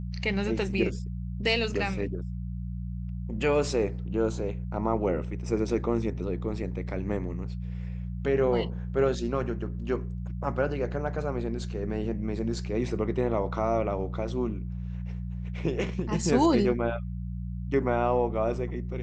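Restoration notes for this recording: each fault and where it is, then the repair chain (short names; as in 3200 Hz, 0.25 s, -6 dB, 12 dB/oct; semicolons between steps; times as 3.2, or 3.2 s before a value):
hum 60 Hz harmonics 3 -34 dBFS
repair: de-hum 60 Hz, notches 3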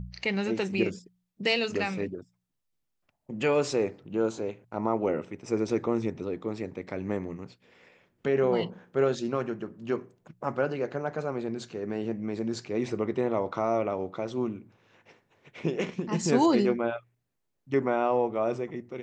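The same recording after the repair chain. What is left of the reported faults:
none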